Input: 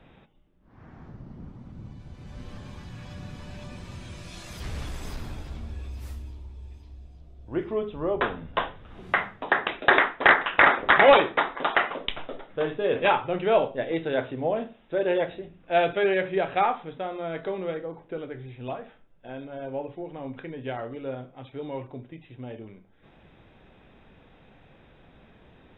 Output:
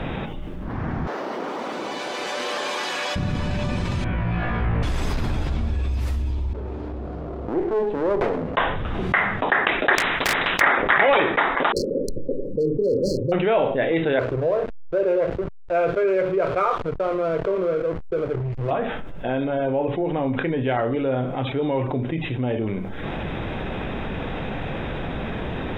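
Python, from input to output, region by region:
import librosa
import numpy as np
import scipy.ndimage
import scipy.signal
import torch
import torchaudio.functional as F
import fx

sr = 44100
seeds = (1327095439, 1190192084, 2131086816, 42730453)

y = fx.chain(x, sr, fx.highpass(hz=410.0, slope=24),
    fx.high_shelf(hz=3500.0, db=8.0), at=(1.07, 3.16))
y = fx.chain(y, sr, fx.lowpass(hz=2200.0, slope=24),
    fx.room_flutter(wall_m=3.0, rt60_s=0.45), at=(4.04, 4.83))
y = fx.chain(y, sr, fx.bandpass_q(hz=510.0, q=1.3),
    fx.running_max(window=17), at=(6.53, 8.57))
y = fx.chain(y, sr, fx.clip_hard(threshold_db=-10.5),
    fx.spectral_comp(ratio=4.0), at=(9.95, 10.61))
y = fx.chain(y, sr, fx.high_shelf(hz=3600.0, db=-4.0),
    fx.clip_hard(threshold_db=-21.5),
    fx.brickwall_bandstop(low_hz=580.0, high_hz=4100.0), at=(11.72, 13.32))
y = fx.chain(y, sr, fx.lowpass(hz=1900.0, slope=24),
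    fx.fixed_phaser(hz=1200.0, stages=8),
    fx.backlash(play_db=-39.5), at=(14.19, 18.71))
y = fx.lowpass(y, sr, hz=3700.0, slope=6)
y = fx.dynamic_eq(y, sr, hz=2000.0, q=1.8, threshold_db=-41.0, ratio=4.0, max_db=5)
y = fx.env_flatten(y, sr, amount_pct=70)
y = F.gain(torch.from_numpy(y), -4.0).numpy()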